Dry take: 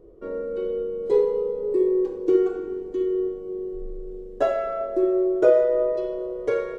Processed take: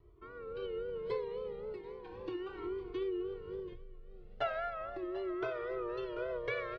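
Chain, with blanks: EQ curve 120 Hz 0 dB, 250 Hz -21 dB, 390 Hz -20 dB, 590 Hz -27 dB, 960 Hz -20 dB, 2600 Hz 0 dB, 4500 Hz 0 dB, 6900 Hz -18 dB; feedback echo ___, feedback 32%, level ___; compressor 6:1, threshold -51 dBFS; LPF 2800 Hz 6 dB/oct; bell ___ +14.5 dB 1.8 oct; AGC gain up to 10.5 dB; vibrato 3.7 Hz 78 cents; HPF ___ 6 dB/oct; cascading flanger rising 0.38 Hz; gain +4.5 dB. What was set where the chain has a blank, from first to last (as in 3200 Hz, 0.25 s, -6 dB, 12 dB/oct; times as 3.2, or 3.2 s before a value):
0.738 s, -12.5 dB, 900 Hz, 120 Hz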